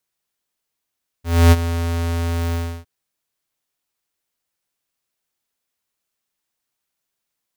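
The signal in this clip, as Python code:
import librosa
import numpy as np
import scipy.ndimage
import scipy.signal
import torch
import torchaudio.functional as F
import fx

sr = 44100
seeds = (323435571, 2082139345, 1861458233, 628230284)

y = fx.adsr_tone(sr, wave='square', hz=84.4, attack_ms=277.0, decay_ms=36.0, sustain_db=-13.0, held_s=1.3, release_ms=308.0, level_db=-8.0)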